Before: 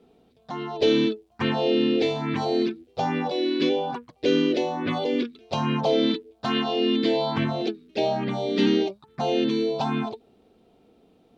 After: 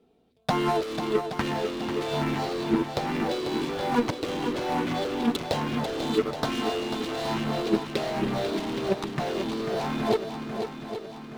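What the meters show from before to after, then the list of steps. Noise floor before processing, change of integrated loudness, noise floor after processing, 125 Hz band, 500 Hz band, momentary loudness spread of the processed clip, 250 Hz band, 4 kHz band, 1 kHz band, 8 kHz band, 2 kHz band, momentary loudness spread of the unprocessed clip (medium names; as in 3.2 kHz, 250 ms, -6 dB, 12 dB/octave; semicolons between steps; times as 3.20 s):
-61 dBFS, -3.5 dB, -41 dBFS, -1.0 dB, -3.5 dB, 4 LU, -3.5 dB, -4.0 dB, 0.0 dB, no reading, -0.5 dB, 8 LU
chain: waveshaping leveller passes 5; compressor with a negative ratio -20 dBFS, ratio -0.5; shuffle delay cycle 822 ms, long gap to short 1.5:1, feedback 49%, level -8 dB; trim -5.5 dB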